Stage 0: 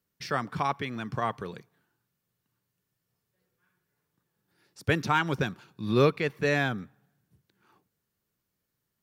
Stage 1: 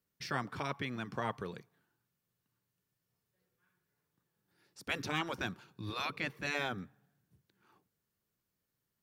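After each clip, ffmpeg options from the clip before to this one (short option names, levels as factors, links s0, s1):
-af "afftfilt=real='re*lt(hypot(re,im),0.2)':imag='im*lt(hypot(re,im),0.2)':win_size=1024:overlap=0.75,volume=0.631"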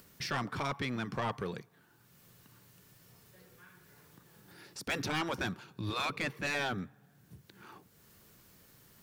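-filter_complex "[0:a]asplit=2[s0][s1];[s1]acompressor=mode=upward:threshold=0.01:ratio=2.5,volume=0.944[s2];[s0][s2]amix=inputs=2:normalize=0,asoftclip=type=tanh:threshold=0.0447"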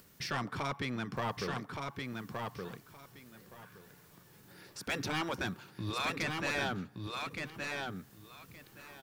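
-af "aecho=1:1:1170|2340|3510:0.631|0.114|0.0204,volume=0.891"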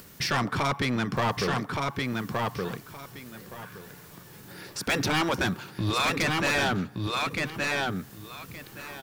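-af "aeval=exprs='0.0668*sin(PI/2*1.78*val(0)/0.0668)':c=same,volume=1.33"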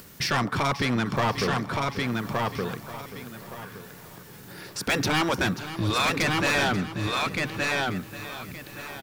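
-af "aecho=1:1:535|1070|1605|2140:0.211|0.0845|0.0338|0.0135,volume=1.19"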